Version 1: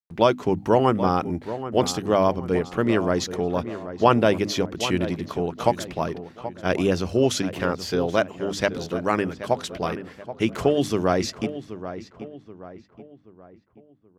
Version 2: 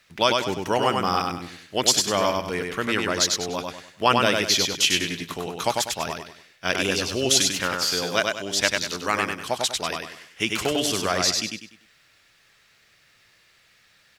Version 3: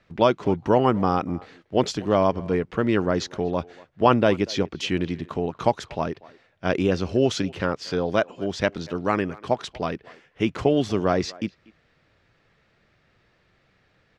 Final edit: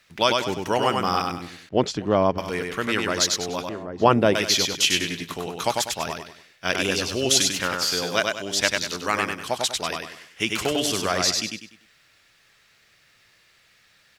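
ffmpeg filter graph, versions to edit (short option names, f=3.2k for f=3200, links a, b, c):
-filter_complex "[1:a]asplit=3[a][b][c];[a]atrim=end=1.692[d];[2:a]atrim=start=1.688:end=2.382[e];[b]atrim=start=2.378:end=3.692[f];[0:a]atrim=start=3.688:end=4.352[g];[c]atrim=start=4.348[h];[d][e]acrossfade=d=0.004:c1=hsin:c2=hsin[i];[i][f]acrossfade=d=0.004:c1=hsin:c2=hsin[j];[j][g]acrossfade=d=0.004:c1=hsin:c2=hsin[k];[k][h]acrossfade=d=0.004:c1=hsin:c2=hsin"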